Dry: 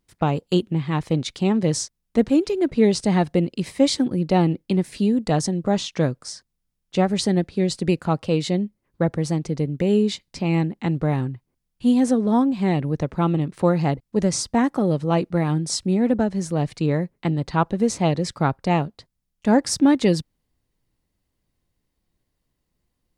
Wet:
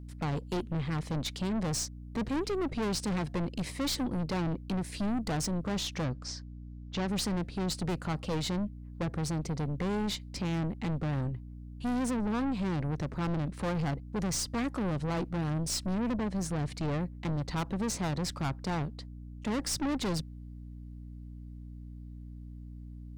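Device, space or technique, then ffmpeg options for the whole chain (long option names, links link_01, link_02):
valve amplifier with mains hum: -filter_complex "[0:a]aeval=exprs='(tanh(22.4*val(0)+0.3)-tanh(0.3))/22.4':channel_layout=same,aeval=exprs='val(0)+0.00891*(sin(2*PI*60*n/s)+sin(2*PI*2*60*n/s)/2+sin(2*PI*3*60*n/s)/3+sin(2*PI*4*60*n/s)/4+sin(2*PI*5*60*n/s)/5)':channel_layout=same,asettb=1/sr,asplit=3[link_01][link_02][link_03];[link_01]atrim=end=6.044[link_04];[link_02]atrim=start=6.04:end=7.08,asetpts=PTS-STARTPTS,afade=type=in:duration=0.004:curve=qsin,afade=type=out:start_time=1.036:duration=0.004:curve=qsin,lowpass=frequency=6400:width=0.5412,lowpass=frequency=6400:width=1.3066[link_05];[link_03]atrim=start=7.076[link_06];[link_04][link_05]acrossfade=duration=0.004:curve1=hsin:curve2=qsin[link_07];[link_07][link_06]acrossfade=duration=0.004:curve1=qsin:curve2=hsin,volume=-2dB"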